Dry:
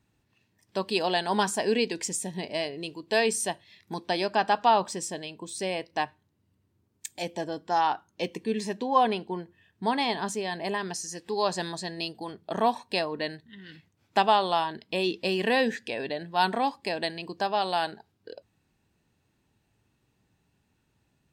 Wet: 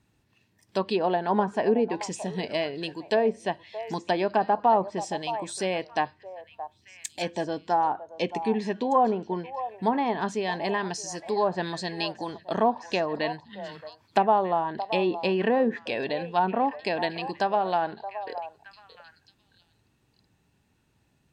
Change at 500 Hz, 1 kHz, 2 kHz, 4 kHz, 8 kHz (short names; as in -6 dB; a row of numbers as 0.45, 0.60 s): +3.0, +1.5, -1.5, -4.5, -6.0 dB